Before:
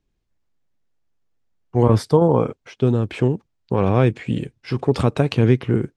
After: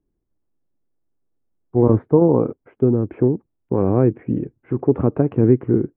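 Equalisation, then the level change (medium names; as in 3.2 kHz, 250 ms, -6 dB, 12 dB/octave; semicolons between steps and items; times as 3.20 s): Gaussian low-pass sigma 5.5 samples; distance through air 130 m; peaking EQ 320 Hz +8.5 dB 0.99 oct; -2.5 dB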